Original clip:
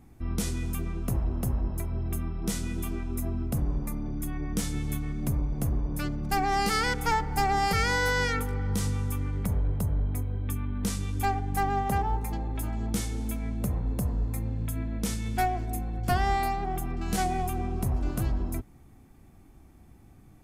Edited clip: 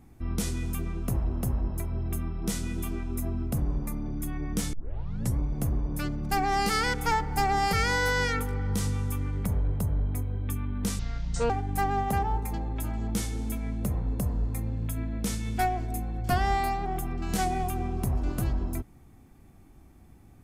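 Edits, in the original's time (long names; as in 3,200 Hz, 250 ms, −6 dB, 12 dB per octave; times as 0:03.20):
0:04.73: tape start 0.65 s
0:10.99–0:11.29: play speed 59%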